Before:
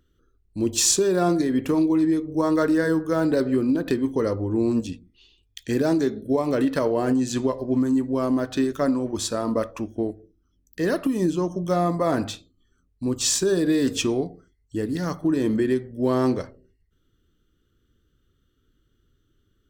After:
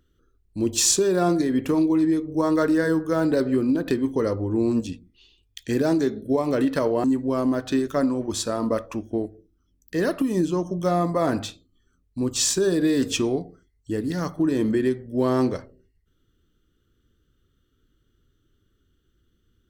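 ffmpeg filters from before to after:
-filter_complex "[0:a]asplit=2[a][b];[a]atrim=end=7.042[c];[b]atrim=start=7.888[d];[c][d]acrossfade=d=0.004:c1=hsin:c2=hsin"

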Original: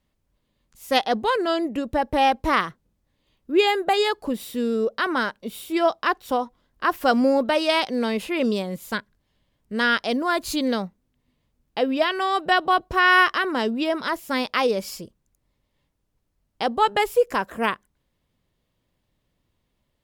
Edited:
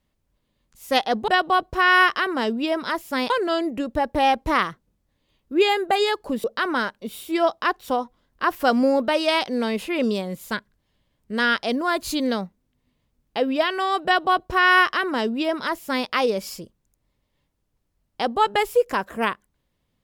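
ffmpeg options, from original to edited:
-filter_complex "[0:a]asplit=4[a][b][c][d];[a]atrim=end=1.282[e];[b]atrim=start=12.458:end=14.482[f];[c]atrim=start=1.278:end=4.422[g];[d]atrim=start=4.848[h];[e][f]acrossfade=d=0.004:c1=hsin:c2=hsin[i];[i][g]acrossfade=d=0.004:c1=hsin:c2=hsin[j];[j][h]acrossfade=d=0.004:c1=hsin:c2=hsin"

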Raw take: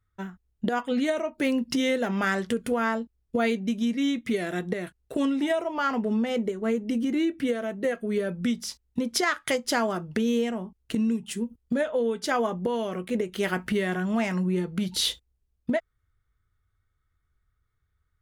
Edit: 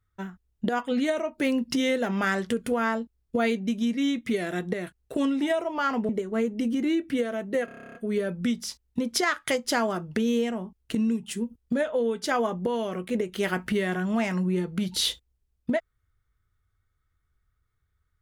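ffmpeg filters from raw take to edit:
-filter_complex "[0:a]asplit=12[a][b][c][d][e][f][g][h][i][j][k][l];[a]atrim=end=6.092[m];[b]atrim=start=6.388:end=7.982[n];[c]atrim=start=7.948:end=7.982[o];[d]atrim=start=7.948:end=7.982[p];[e]atrim=start=7.948:end=7.982[q];[f]atrim=start=7.948:end=7.982[r];[g]atrim=start=7.948:end=7.982[s];[h]atrim=start=7.948:end=7.982[t];[i]atrim=start=7.948:end=7.982[u];[j]atrim=start=7.948:end=7.982[v];[k]atrim=start=7.948:end=7.982[w];[l]atrim=start=7.948[x];[m][n]acrossfade=d=0.004:c1=hsin:c2=hsin[y];[y][o]acrossfade=d=0.004:c1=hsin:c2=hsin[z];[z][p]acrossfade=d=0.004:c1=hsin:c2=hsin[aa];[aa][q]acrossfade=d=0.004:c1=hsin:c2=hsin[ab];[ab][r]acrossfade=d=0.004:c1=hsin:c2=hsin[ac];[ac][s]acrossfade=d=0.004:c1=hsin:c2=hsin[ad];[ad][t]acrossfade=d=0.004:c1=hsin:c2=hsin[ae];[ae][u]acrossfade=d=0.004:c1=hsin:c2=hsin[af];[af][v]acrossfade=d=0.004:c1=hsin:c2=hsin[ag];[ag][w]acrossfade=d=0.004:c1=hsin:c2=hsin[ah];[ah][x]acrossfade=d=0.004:c1=hsin:c2=hsin"

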